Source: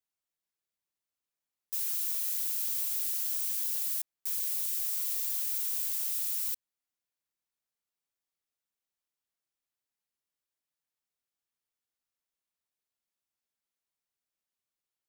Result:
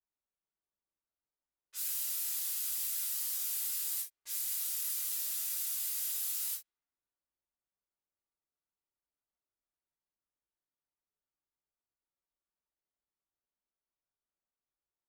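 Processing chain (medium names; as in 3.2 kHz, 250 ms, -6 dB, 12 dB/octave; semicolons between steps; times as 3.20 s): level-controlled noise filter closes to 1.1 kHz, open at -30 dBFS; gated-style reverb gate 90 ms falling, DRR -5.5 dB; trim -6.5 dB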